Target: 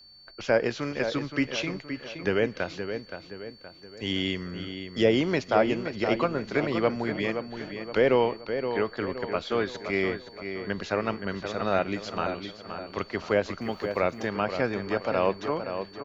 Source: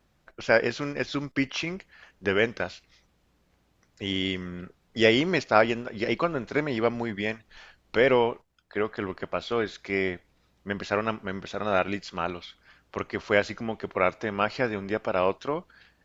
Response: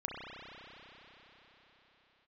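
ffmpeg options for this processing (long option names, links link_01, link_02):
-filter_complex "[0:a]asettb=1/sr,asplit=3[link_01][link_02][link_03];[link_01]atrim=end=13.614[link_04];[link_02]atrim=start=13.61:end=14.27,asetpts=PTS-STARTPTS,afade=type=in:duration=0.004:curve=qsin,afade=type=out:start_time=0.656:duration=0.004:curve=qsin,aemphasis=mode=production:type=50fm[link_05];[link_03]atrim=start=14.266[link_06];[link_04][link_05]acrossfade=duration=0.004:curve1=hsin:curve2=qsin[link_07];[link_07][link_06]acrossfade=duration=0.004:curve1=qsin:curve2=hsin,aeval=exprs='val(0)+0.00316*sin(2*PI*4500*n/s)':channel_layout=same,acrossover=split=110|860[link_08][link_09][link_10];[link_10]alimiter=limit=-20dB:level=0:latency=1:release=216[link_11];[link_08][link_09][link_11]amix=inputs=3:normalize=0,asplit=2[link_12][link_13];[link_13]adelay=521,lowpass=frequency=3300:poles=1,volume=-8dB,asplit=2[link_14][link_15];[link_15]adelay=521,lowpass=frequency=3300:poles=1,volume=0.46,asplit=2[link_16][link_17];[link_17]adelay=521,lowpass=frequency=3300:poles=1,volume=0.46,asplit=2[link_18][link_19];[link_19]adelay=521,lowpass=frequency=3300:poles=1,volume=0.46,asplit=2[link_20][link_21];[link_21]adelay=521,lowpass=frequency=3300:poles=1,volume=0.46[link_22];[link_12][link_14][link_16][link_18][link_20][link_22]amix=inputs=6:normalize=0"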